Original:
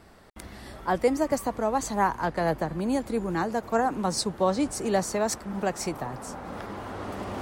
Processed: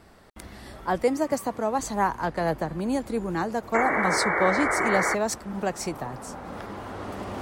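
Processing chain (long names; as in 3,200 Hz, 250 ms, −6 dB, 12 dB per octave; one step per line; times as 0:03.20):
0:01.03–0:01.79: high-pass filter 94 Hz 12 dB per octave
0:03.74–0:05.15: sound drawn into the spectrogram noise 300–2,300 Hz −25 dBFS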